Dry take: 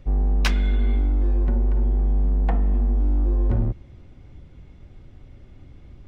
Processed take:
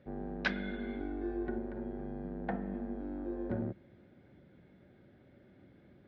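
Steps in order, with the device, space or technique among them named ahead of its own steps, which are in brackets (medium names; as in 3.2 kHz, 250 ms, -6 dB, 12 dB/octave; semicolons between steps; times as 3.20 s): 1.00–1.58 s: comb 2.7 ms, depth 64%; kitchen radio (cabinet simulation 170–4100 Hz, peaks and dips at 200 Hz +7 dB, 360 Hz +4 dB, 580 Hz +6 dB, 1.1 kHz -6 dB, 1.6 kHz +9 dB, 2.8 kHz -6 dB); trim -8.5 dB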